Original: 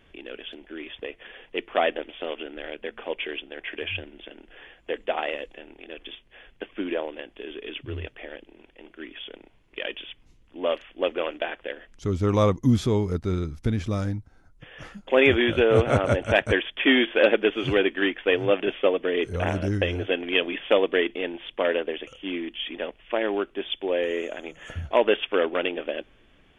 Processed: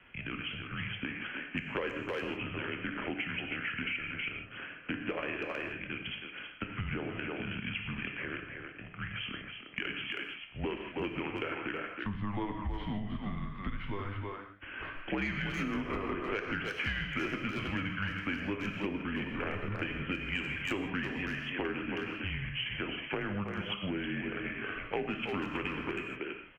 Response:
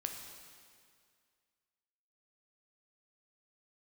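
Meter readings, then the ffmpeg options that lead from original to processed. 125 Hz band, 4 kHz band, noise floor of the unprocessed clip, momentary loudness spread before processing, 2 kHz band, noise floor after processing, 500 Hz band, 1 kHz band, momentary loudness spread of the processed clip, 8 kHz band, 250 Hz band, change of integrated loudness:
-9.5 dB, -9.0 dB, -58 dBFS, 20 LU, -6.0 dB, -48 dBFS, -16.5 dB, -9.0 dB, 6 LU, no reading, -8.0 dB, -11.0 dB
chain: -filter_complex "[0:a]acrossover=split=200|350|1300[s0][s1][s2][s3];[s3]acontrast=49[s4];[s0][s1][s2][s4]amix=inputs=4:normalize=0,highpass=f=160:t=q:w=0.5412,highpass=f=160:t=q:w=1.307,lowpass=f=3100:t=q:w=0.5176,lowpass=f=3100:t=q:w=0.7071,lowpass=f=3100:t=q:w=1.932,afreqshift=-200,asoftclip=type=tanh:threshold=0.596,asplit=2[s5][s6];[s6]adelay=320,highpass=300,lowpass=3400,asoftclip=type=hard:threshold=0.168,volume=0.501[s7];[s5][s7]amix=inputs=2:normalize=0[s8];[1:a]atrim=start_sample=2205,afade=t=out:st=0.22:d=0.01,atrim=end_sample=10143[s9];[s8][s9]afir=irnorm=-1:irlink=0,acompressor=threshold=0.0224:ratio=6"

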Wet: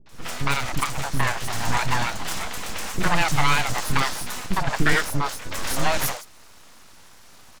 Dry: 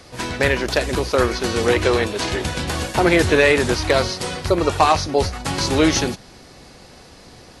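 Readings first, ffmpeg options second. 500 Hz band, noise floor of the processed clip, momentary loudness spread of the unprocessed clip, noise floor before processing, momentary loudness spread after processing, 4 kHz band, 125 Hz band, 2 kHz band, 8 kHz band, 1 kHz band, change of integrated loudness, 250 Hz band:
-15.0 dB, -47 dBFS, 9 LU, -45 dBFS, 9 LU, -5.0 dB, -4.0 dB, -3.5 dB, -2.0 dB, -3.5 dB, -6.0 dB, -10.0 dB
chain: -filter_complex "[0:a]highpass=f=250:w=0.5412,highpass=f=250:w=1.3066,equalizer=f=400:t=q:w=4:g=-4,equalizer=f=2700:t=q:w=4:g=-8,equalizer=f=6700:t=q:w=4:g=5,lowpass=f=8400:w=0.5412,lowpass=f=8400:w=1.3066,aeval=exprs='abs(val(0))':c=same,acrossover=split=410|4700[s0][s1][s2];[s1]adelay=60[s3];[s2]adelay=90[s4];[s0][s3][s4]amix=inputs=3:normalize=0"

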